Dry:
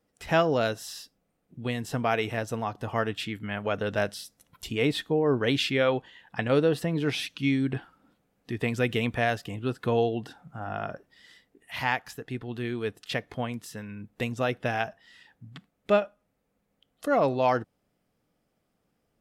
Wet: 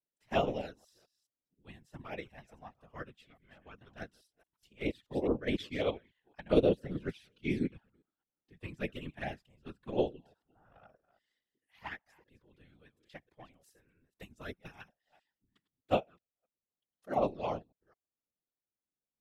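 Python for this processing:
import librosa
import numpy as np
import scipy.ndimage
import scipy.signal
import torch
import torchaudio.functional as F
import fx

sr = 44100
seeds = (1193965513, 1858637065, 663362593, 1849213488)

y = fx.reverse_delay(x, sr, ms=211, wet_db=-12.5)
y = fx.high_shelf(y, sr, hz=6800.0, db=10.5, at=(13.6, 15.95))
y = fx.env_flanger(y, sr, rest_ms=4.0, full_db=-19.5)
y = fx.whisperise(y, sr, seeds[0])
y = fx.upward_expand(y, sr, threshold_db=-36.0, expansion=2.5)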